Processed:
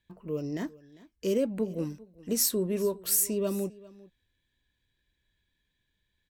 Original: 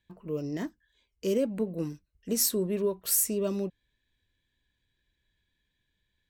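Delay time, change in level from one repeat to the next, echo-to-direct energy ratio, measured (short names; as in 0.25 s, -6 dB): 0.399 s, no steady repeat, -21.0 dB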